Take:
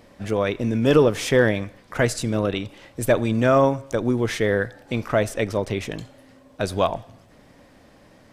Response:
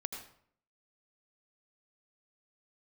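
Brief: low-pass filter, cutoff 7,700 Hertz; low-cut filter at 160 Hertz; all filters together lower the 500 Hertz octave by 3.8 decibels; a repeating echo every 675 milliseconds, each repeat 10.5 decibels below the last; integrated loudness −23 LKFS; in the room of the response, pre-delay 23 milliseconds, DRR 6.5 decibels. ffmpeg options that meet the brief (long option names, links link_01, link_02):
-filter_complex "[0:a]highpass=160,lowpass=7700,equalizer=frequency=500:width_type=o:gain=-4.5,aecho=1:1:675|1350|2025:0.299|0.0896|0.0269,asplit=2[link_01][link_02];[1:a]atrim=start_sample=2205,adelay=23[link_03];[link_02][link_03]afir=irnorm=-1:irlink=0,volume=-6.5dB[link_04];[link_01][link_04]amix=inputs=2:normalize=0,volume=1dB"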